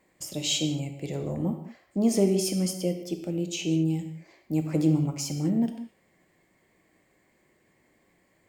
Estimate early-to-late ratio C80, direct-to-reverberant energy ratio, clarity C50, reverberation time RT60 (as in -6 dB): 10.0 dB, 5.5 dB, 7.5 dB, not exponential